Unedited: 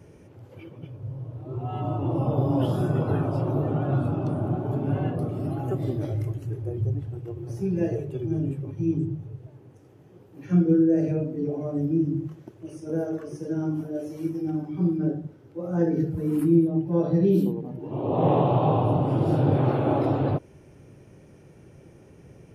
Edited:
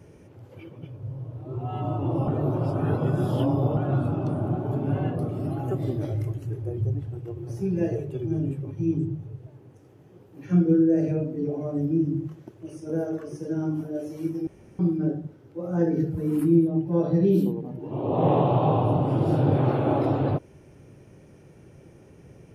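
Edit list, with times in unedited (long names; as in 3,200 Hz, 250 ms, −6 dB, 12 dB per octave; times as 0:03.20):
0:02.28–0:03.77: reverse
0:14.47–0:14.79: fill with room tone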